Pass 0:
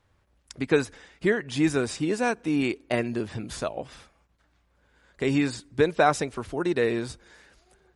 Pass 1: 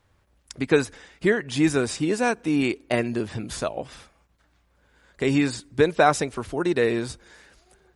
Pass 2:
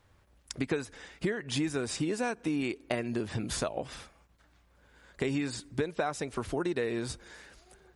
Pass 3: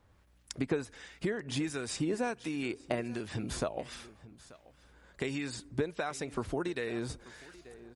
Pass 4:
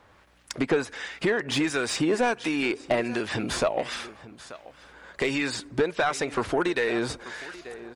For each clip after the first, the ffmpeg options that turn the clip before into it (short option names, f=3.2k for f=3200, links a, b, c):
-af "highshelf=f=8.5k:g=4,volume=2.5dB"
-af "acompressor=threshold=-28dB:ratio=8"
-filter_complex "[0:a]aecho=1:1:885:0.112,acrossover=split=1300[a][b];[a]aeval=exprs='val(0)*(1-0.5/2+0.5/2*cos(2*PI*1.4*n/s))':c=same[c];[b]aeval=exprs='val(0)*(1-0.5/2-0.5/2*cos(2*PI*1.4*n/s))':c=same[d];[c][d]amix=inputs=2:normalize=0,aeval=exprs='val(0)+0.000316*(sin(2*PI*60*n/s)+sin(2*PI*2*60*n/s)/2+sin(2*PI*3*60*n/s)/3+sin(2*PI*4*60*n/s)/4+sin(2*PI*5*60*n/s)/5)':c=same"
-filter_complex "[0:a]asplit=2[a][b];[b]highpass=f=720:p=1,volume=17dB,asoftclip=type=tanh:threshold=-17dB[c];[a][c]amix=inputs=2:normalize=0,lowpass=f=2.9k:p=1,volume=-6dB,volume=5dB"